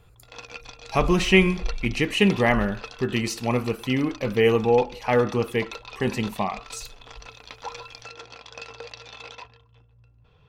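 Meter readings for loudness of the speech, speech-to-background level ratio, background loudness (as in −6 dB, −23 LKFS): −23.0 LKFS, 18.0 dB, −41.0 LKFS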